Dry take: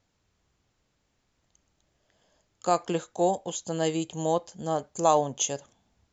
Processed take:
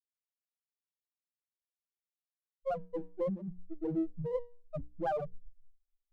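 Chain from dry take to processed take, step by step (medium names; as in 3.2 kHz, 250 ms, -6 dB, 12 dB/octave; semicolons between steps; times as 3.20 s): send-on-delta sampling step -31 dBFS; tone controls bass +7 dB, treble -8 dB; sample-and-hold 21×; expander -29 dBFS; on a send at -8 dB: treble shelf 2.6 kHz -5.5 dB + reverberation RT60 0.50 s, pre-delay 4 ms; on the sum: loudest bins only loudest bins 1; compression 2:1, threshold -38 dBFS, peak gain reduction 7 dB; hum notches 60/120/180/240/300/360/420/480 Hz; sliding maximum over 9 samples; trim +4.5 dB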